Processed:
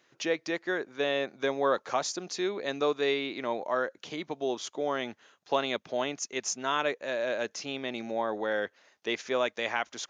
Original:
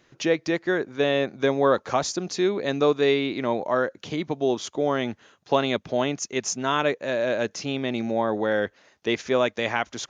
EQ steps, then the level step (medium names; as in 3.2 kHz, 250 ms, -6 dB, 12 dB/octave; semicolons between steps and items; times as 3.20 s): high-pass 480 Hz 6 dB/octave; -4.0 dB